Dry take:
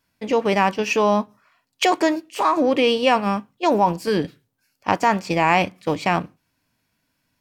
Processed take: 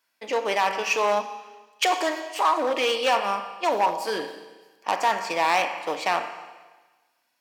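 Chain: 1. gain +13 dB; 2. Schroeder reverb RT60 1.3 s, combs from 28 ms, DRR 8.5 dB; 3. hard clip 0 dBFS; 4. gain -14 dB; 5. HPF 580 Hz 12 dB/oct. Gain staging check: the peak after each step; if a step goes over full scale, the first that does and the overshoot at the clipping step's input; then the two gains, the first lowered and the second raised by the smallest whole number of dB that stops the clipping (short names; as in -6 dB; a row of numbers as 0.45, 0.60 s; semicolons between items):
+9.5, +9.5, 0.0, -14.0, -9.0 dBFS; step 1, 9.5 dB; step 1 +3 dB, step 4 -4 dB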